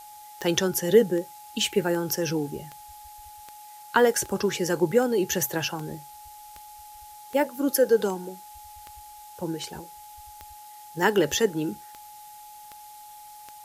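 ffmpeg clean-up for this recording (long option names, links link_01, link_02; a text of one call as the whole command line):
ffmpeg -i in.wav -af "adeclick=threshold=4,bandreject=frequency=840:width=30,afftdn=noise_reduction=25:noise_floor=-46" out.wav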